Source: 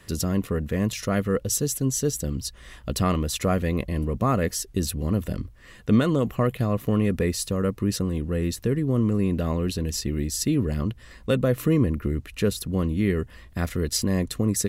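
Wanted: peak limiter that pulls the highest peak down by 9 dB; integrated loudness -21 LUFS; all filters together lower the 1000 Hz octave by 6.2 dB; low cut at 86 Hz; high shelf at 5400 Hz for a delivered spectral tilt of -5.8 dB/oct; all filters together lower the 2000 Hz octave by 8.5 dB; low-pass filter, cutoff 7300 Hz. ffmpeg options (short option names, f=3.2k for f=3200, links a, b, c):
-af "highpass=86,lowpass=7.3k,equalizer=f=1k:t=o:g=-5.5,equalizer=f=2k:t=o:g=-8.5,highshelf=f=5.4k:g=-5.5,volume=8.5dB,alimiter=limit=-10dB:level=0:latency=1"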